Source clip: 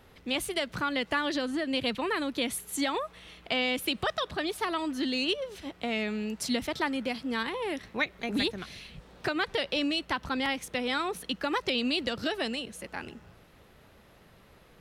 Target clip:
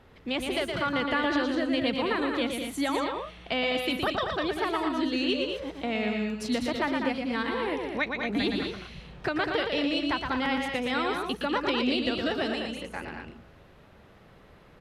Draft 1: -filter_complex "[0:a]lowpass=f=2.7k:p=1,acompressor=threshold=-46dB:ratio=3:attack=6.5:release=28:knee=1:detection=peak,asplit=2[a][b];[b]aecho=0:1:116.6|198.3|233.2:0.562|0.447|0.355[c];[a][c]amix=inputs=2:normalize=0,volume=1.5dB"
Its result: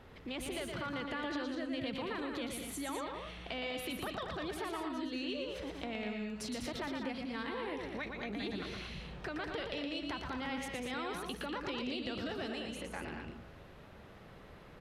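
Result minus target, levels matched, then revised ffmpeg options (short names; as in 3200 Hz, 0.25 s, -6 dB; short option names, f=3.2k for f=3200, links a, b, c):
compressor: peak gain reduction +14.5 dB
-filter_complex "[0:a]lowpass=f=2.7k:p=1,asplit=2[a][b];[b]aecho=0:1:116.6|198.3|233.2:0.562|0.447|0.355[c];[a][c]amix=inputs=2:normalize=0,volume=1.5dB"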